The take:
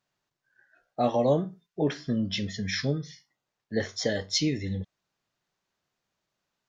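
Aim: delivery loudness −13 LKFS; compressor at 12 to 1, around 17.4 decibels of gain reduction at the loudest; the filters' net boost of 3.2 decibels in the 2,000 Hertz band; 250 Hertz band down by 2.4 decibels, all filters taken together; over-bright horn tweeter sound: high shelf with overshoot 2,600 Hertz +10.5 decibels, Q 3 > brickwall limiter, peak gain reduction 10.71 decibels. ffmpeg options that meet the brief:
ffmpeg -i in.wav -af "equalizer=frequency=250:width_type=o:gain=-3,equalizer=frequency=2000:width_type=o:gain=7.5,acompressor=threshold=-38dB:ratio=12,highshelf=frequency=2600:width_type=q:width=3:gain=10.5,volume=25dB,alimiter=limit=0dB:level=0:latency=1" out.wav

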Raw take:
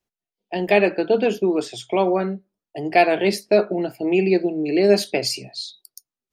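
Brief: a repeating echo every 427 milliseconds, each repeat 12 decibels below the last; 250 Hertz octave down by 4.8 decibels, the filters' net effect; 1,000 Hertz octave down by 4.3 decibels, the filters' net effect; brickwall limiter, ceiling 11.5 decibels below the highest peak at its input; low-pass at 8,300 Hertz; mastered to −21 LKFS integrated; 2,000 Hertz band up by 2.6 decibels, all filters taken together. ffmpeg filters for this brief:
ffmpeg -i in.wav -af "lowpass=8300,equalizer=frequency=250:width_type=o:gain=-7.5,equalizer=frequency=1000:width_type=o:gain=-7.5,equalizer=frequency=2000:width_type=o:gain=5,alimiter=limit=-16dB:level=0:latency=1,aecho=1:1:427|854|1281:0.251|0.0628|0.0157,volume=6dB" out.wav

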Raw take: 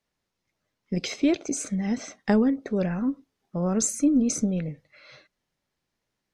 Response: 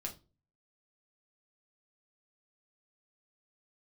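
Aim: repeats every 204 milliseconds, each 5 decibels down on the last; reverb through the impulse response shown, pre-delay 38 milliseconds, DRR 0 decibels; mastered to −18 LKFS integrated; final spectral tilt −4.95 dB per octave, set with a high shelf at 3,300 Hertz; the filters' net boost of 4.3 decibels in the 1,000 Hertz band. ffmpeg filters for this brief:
-filter_complex "[0:a]equalizer=frequency=1000:width_type=o:gain=5.5,highshelf=frequency=3300:gain=3.5,aecho=1:1:204|408|612|816|1020|1224|1428:0.562|0.315|0.176|0.0988|0.0553|0.031|0.0173,asplit=2[link_01][link_02];[1:a]atrim=start_sample=2205,adelay=38[link_03];[link_02][link_03]afir=irnorm=-1:irlink=0,volume=1dB[link_04];[link_01][link_04]amix=inputs=2:normalize=0,volume=2.5dB"

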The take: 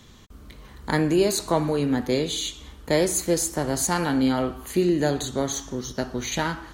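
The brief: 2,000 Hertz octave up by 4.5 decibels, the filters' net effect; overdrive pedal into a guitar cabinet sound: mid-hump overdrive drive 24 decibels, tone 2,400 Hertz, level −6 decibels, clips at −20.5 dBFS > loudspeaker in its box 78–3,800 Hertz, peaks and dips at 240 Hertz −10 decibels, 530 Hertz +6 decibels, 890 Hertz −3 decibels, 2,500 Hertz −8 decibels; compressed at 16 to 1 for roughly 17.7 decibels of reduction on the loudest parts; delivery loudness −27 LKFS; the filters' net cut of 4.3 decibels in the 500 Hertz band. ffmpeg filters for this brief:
ffmpeg -i in.wav -filter_complex "[0:a]equalizer=frequency=500:width_type=o:gain=-8.5,equalizer=frequency=2000:width_type=o:gain=8,acompressor=threshold=-36dB:ratio=16,asplit=2[link_01][link_02];[link_02]highpass=frequency=720:poles=1,volume=24dB,asoftclip=type=tanh:threshold=-20.5dB[link_03];[link_01][link_03]amix=inputs=2:normalize=0,lowpass=frequency=2400:poles=1,volume=-6dB,highpass=78,equalizer=frequency=240:width_type=q:width=4:gain=-10,equalizer=frequency=530:width_type=q:width=4:gain=6,equalizer=frequency=890:width_type=q:width=4:gain=-3,equalizer=frequency=2500:width_type=q:width=4:gain=-8,lowpass=frequency=3800:width=0.5412,lowpass=frequency=3800:width=1.3066,volume=7.5dB" out.wav

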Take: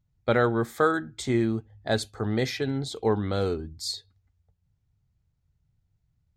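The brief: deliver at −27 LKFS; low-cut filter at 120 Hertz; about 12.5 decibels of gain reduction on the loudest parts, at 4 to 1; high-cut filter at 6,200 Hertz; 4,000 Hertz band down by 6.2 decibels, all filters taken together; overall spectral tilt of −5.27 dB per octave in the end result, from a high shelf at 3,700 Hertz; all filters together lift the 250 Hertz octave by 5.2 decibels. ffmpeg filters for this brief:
ffmpeg -i in.wav -af "highpass=120,lowpass=6200,equalizer=frequency=250:width_type=o:gain=7,highshelf=frequency=3700:gain=-4.5,equalizer=frequency=4000:width_type=o:gain=-3.5,acompressor=threshold=-31dB:ratio=4,volume=8.5dB" out.wav

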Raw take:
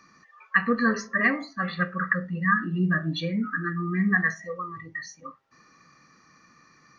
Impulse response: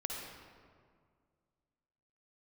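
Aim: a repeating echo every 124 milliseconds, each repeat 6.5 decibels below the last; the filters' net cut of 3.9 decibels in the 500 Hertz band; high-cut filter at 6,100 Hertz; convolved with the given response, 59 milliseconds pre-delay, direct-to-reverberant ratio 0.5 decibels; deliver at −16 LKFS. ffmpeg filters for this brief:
-filter_complex "[0:a]lowpass=6100,equalizer=frequency=500:width_type=o:gain=-4.5,aecho=1:1:124|248|372|496|620|744:0.473|0.222|0.105|0.0491|0.0231|0.0109,asplit=2[link_01][link_02];[1:a]atrim=start_sample=2205,adelay=59[link_03];[link_02][link_03]afir=irnorm=-1:irlink=0,volume=-2dB[link_04];[link_01][link_04]amix=inputs=2:normalize=0,volume=6.5dB"

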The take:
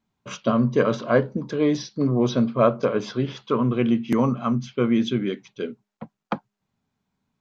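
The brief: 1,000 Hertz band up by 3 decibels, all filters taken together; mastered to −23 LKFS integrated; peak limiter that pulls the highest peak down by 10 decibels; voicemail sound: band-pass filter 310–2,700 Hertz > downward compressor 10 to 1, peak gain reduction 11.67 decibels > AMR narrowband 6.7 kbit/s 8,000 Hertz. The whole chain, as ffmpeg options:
ffmpeg -i in.wav -af "equalizer=frequency=1000:width_type=o:gain=4,alimiter=limit=-13.5dB:level=0:latency=1,highpass=310,lowpass=2700,acompressor=threshold=-30dB:ratio=10,volume=14dB" -ar 8000 -c:a libopencore_amrnb -b:a 6700 out.amr

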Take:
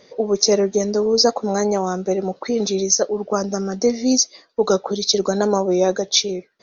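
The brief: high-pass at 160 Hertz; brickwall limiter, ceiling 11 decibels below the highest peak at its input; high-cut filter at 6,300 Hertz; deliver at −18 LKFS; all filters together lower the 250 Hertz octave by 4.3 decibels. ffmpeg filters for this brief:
ffmpeg -i in.wav -af "highpass=160,lowpass=6300,equalizer=frequency=250:width_type=o:gain=-4.5,volume=6.5dB,alimiter=limit=-8dB:level=0:latency=1" out.wav

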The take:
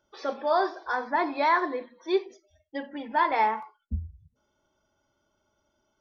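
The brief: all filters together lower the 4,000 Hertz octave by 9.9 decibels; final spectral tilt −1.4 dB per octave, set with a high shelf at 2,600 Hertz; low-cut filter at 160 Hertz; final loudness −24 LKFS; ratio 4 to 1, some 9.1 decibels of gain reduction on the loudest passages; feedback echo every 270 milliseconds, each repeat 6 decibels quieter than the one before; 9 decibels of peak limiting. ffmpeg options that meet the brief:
ffmpeg -i in.wav -af "highpass=160,highshelf=frequency=2600:gain=-6.5,equalizer=frequency=4000:width_type=o:gain=-6.5,acompressor=threshold=-31dB:ratio=4,alimiter=level_in=7dB:limit=-24dB:level=0:latency=1,volume=-7dB,aecho=1:1:270|540|810|1080|1350|1620:0.501|0.251|0.125|0.0626|0.0313|0.0157,volume=16dB" out.wav

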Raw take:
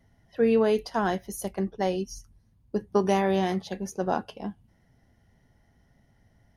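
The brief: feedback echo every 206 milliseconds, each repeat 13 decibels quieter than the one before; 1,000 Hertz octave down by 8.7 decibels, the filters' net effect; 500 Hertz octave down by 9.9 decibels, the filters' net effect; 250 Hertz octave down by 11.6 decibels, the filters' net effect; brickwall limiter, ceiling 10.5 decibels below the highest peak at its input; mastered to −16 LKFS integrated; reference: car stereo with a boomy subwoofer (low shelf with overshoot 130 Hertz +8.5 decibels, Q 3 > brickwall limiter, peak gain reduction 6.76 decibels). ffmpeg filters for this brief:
ffmpeg -i in.wav -af "equalizer=frequency=250:width_type=o:gain=-8,equalizer=frequency=500:width_type=o:gain=-7,equalizer=frequency=1000:width_type=o:gain=-8,alimiter=level_in=3dB:limit=-24dB:level=0:latency=1,volume=-3dB,lowshelf=frequency=130:width_type=q:width=3:gain=8.5,aecho=1:1:206|412|618:0.224|0.0493|0.0108,volume=26.5dB,alimiter=limit=-4.5dB:level=0:latency=1" out.wav

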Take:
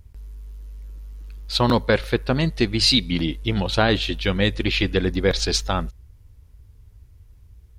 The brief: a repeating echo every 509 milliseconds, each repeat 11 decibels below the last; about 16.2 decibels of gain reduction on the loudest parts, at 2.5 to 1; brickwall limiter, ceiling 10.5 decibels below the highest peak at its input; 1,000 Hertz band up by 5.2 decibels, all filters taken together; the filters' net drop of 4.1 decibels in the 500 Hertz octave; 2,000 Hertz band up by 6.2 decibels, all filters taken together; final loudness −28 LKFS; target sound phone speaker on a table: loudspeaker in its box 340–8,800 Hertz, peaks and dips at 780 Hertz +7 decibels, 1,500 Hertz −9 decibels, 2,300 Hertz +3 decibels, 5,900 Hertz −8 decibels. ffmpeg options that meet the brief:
ffmpeg -i in.wav -af "equalizer=frequency=500:width_type=o:gain=-6.5,equalizer=frequency=1000:width_type=o:gain=3.5,equalizer=frequency=2000:width_type=o:gain=8.5,acompressor=threshold=-38dB:ratio=2.5,alimiter=level_in=2.5dB:limit=-24dB:level=0:latency=1,volume=-2.5dB,highpass=frequency=340:width=0.5412,highpass=frequency=340:width=1.3066,equalizer=frequency=780:width_type=q:width=4:gain=7,equalizer=frequency=1500:width_type=q:width=4:gain=-9,equalizer=frequency=2300:width_type=q:width=4:gain=3,equalizer=frequency=5900:width_type=q:width=4:gain=-8,lowpass=frequency=8800:width=0.5412,lowpass=frequency=8800:width=1.3066,aecho=1:1:509|1018|1527:0.282|0.0789|0.0221,volume=11dB" out.wav

